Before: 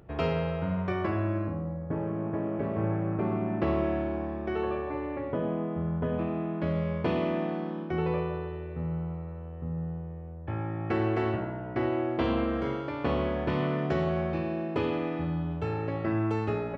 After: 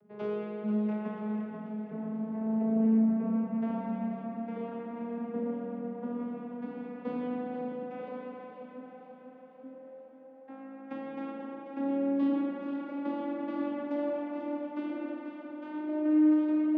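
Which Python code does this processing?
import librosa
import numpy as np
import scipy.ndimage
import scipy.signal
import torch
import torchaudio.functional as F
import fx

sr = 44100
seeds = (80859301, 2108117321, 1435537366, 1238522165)

y = fx.vocoder_glide(x, sr, note=56, semitones=7)
y = fx.peak_eq(y, sr, hz=160.0, db=5.0, octaves=1.5)
y = fx.hum_notches(y, sr, base_hz=50, count=6)
y = fx.echo_feedback(y, sr, ms=488, feedback_pct=55, wet_db=-9.0)
y = fx.rev_spring(y, sr, rt60_s=2.1, pass_ms=(36,), chirp_ms=35, drr_db=1.5)
y = fx.doppler_dist(y, sr, depth_ms=0.11)
y = F.gain(torch.from_numpy(y), -6.5).numpy()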